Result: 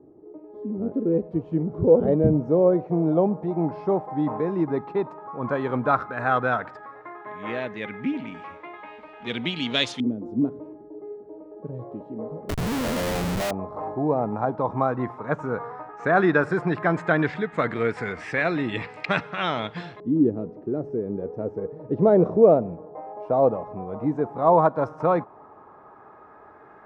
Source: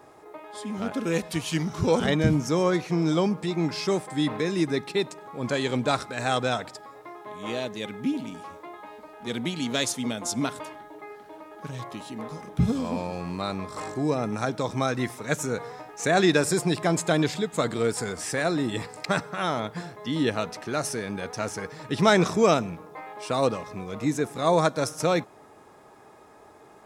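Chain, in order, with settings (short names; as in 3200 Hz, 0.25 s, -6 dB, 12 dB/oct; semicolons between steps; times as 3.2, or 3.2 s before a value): LFO low-pass saw up 0.1 Hz 320–3300 Hz; 12.49–13.51 Schmitt trigger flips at -36.5 dBFS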